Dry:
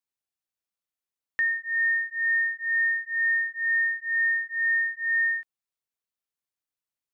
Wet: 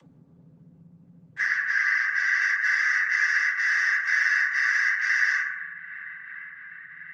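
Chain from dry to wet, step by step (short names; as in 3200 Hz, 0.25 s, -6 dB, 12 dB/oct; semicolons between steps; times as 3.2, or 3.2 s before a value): spectrum mirrored in octaves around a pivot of 1800 Hz; dynamic EQ 1700 Hz, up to +8 dB, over -39 dBFS, Q 2.6; frequency shift -33 Hz; limiter -16.5 dBFS, peak gain reduction 4.5 dB; compressor 12:1, threshold -23 dBFS, peak gain reduction 5 dB; swung echo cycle 1.123 s, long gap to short 3:1, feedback 54%, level -20 dB; added harmonics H 2 -22 dB, 5 -19 dB, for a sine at -17.5 dBFS; noise vocoder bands 16; 1.45–2.42 air absorption 57 m; reverb RT60 1.1 s, pre-delay 3 ms, DRR -4 dB; upward compressor, threshold -33 dBFS; gain -4 dB; Opus 20 kbps 48000 Hz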